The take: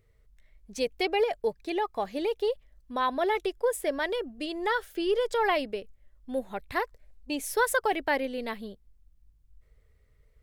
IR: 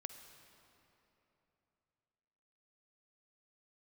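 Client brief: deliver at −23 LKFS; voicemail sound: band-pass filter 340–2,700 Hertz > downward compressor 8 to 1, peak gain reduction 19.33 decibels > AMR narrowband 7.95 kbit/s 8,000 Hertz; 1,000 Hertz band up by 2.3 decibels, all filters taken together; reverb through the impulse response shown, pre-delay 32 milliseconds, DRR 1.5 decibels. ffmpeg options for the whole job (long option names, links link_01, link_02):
-filter_complex "[0:a]equalizer=frequency=1000:width_type=o:gain=3,asplit=2[link_01][link_02];[1:a]atrim=start_sample=2205,adelay=32[link_03];[link_02][link_03]afir=irnorm=-1:irlink=0,volume=2dB[link_04];[link_01][link_04]amix=inputs=2:normalize=0,highpass=340,lowpass=2700,acompressor=threshold=-37dB:ratio=8,volume=19dB" -ar 8000 -c:a libopencore_amrnb -b:a 7950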